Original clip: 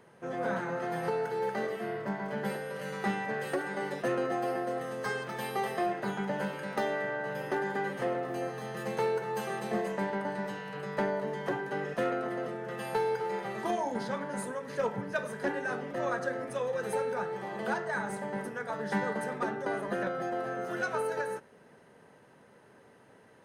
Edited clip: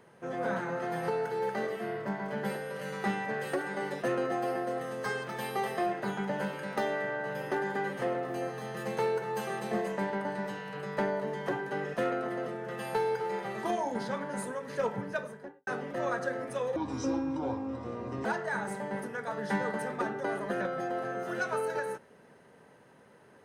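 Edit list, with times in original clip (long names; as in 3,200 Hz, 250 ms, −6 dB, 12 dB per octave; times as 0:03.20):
0:15.02–0:15.67: fade out and dull
0:16.76–0:17.67: play speed 61%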